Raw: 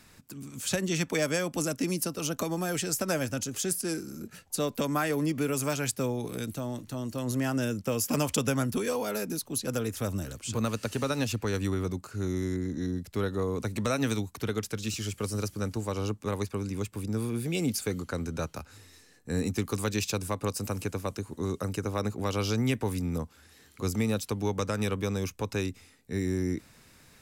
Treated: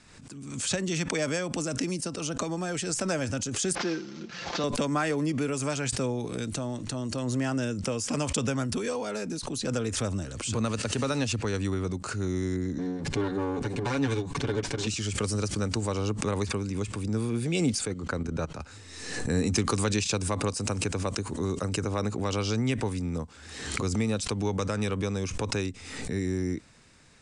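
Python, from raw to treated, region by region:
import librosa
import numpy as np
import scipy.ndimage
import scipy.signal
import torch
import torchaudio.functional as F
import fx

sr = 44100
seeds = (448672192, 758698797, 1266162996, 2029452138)

y = fx.chain(x, sr, fx.cvsd(bps=32000),
    fx.highpass(hz=280.0, slope=6),
    fx.comb(ms=5.8, depth=0.5), at=(3.75, 4.64))
y = fx.chain(y, sr, fx.lower_of_two(delay_ms=7.1),
    fx.lowpass(hz=3400.0, slope=6),
    fx.notch_comb(f0_hz=650.0), at=(12.78, 14.87))
y = fx.chain(y, sr, fx.high_shelf(hz=3100.0, db=-8.0),
    fx.level_steps(step_db=11), at=(17.85, 18.6))
y = fx.rider(y, sr, range_db=10, speed_s=2.0)
y = scipy.signal.sosfilt(scipy.signal.butter(12, 9500.0, 'lowpass', fs=sr, output='sos'), y)
y = fx.pre_swell(y, sr, db_per_s=49.0)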